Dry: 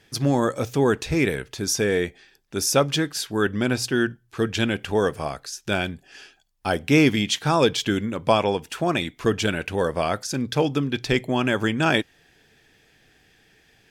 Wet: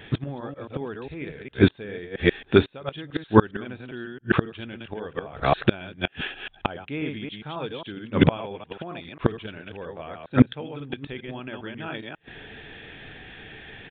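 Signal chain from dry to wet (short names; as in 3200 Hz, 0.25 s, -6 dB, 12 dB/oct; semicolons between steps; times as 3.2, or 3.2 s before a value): reverse delay 0.135 s, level -3 dB; 2.05–2.96 compressor 3:1, threshold -24 dBFS, peak gain reduction 8.5 dB; flipped gate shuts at -15 dBFS, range -29 dB; downsampling 8000 Hz; maximiser +15.5 dB; gain -1.5 dB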